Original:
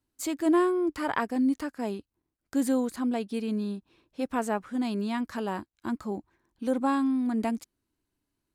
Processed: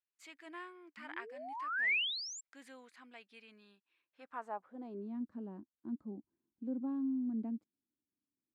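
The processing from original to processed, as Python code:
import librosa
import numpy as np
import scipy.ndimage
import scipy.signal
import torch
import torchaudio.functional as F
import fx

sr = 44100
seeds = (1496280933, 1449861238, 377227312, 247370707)

y = fx.spec_paint(x, sr, seeds[0], shape='rise', start_s=0.97, length_s=1.44, low_hz=210.0, high_hz=7700.0, level_db=-22.0)
y = fx.filter_sweep_bandpass(y, sr, from_hz=2200.0, to_hz=240.0, start_s=4.05, end_s=5.2, q=2.0)
y = F.gain(torch.from_numpy(y), -8.5).numpy()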